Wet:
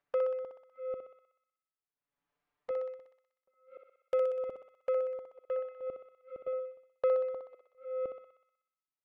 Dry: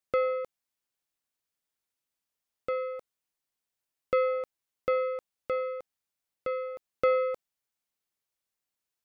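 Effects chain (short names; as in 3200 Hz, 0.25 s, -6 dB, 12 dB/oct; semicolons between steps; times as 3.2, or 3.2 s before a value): reverse delay 0.539 s, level -7.5 dB; LPF 1700 Hz 12 dB/oct; gate -37 dBFS, range -21 dB; dynamic EQ 860 Hz, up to +8 dB, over -42 dBFS, Q 0.71; upward compressor, threshold -49 dBFS; envelope flanger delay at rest 7.1 ms, full sweep at -36.5 dBFS; thinning echo 62 ms, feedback 68%, high-pass 560 Hz, level -4 dB; on a send at -23 dB: reverb RT60 0.30 s, pre-delay 34 ms; on the sum: gain -7 dB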